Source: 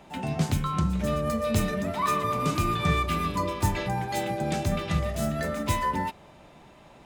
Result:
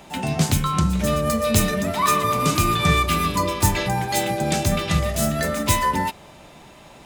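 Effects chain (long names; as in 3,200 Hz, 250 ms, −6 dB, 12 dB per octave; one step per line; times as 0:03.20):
high-shelf EQ 3,500 Hz +9 dB
level +5.5 dB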